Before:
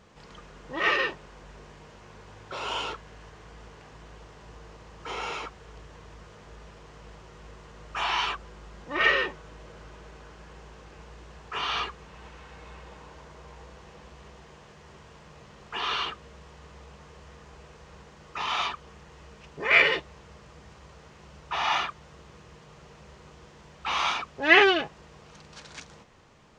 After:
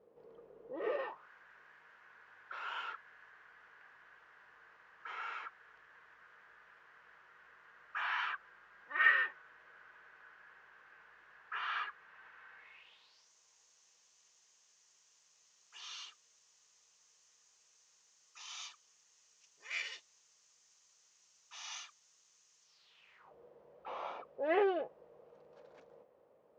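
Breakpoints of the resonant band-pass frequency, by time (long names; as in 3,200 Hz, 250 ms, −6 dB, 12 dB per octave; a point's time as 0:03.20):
resonant band-pass, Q 4.2
0:00.88 460 Hz
0:01.29 1,600 Hz
0:12.54 1,600 Hz
0:13.31 6,400 Hz
0:22.62 6,400 Hz
0:23.16 2,100 Hz
0:23.34 530 Hz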